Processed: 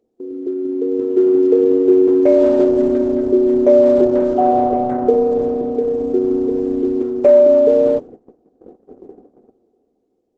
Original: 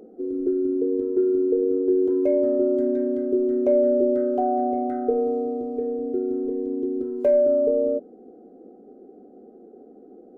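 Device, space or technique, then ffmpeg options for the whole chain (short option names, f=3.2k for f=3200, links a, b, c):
video call: -af "highpass=f=150:p=1,dynaudnorm=f=120:g=17:m=14dB,agate=range=-21dB:threshold=-34dB:ratio=16:detection=peak" -ar 48000 -c:a libopus -b:a 12k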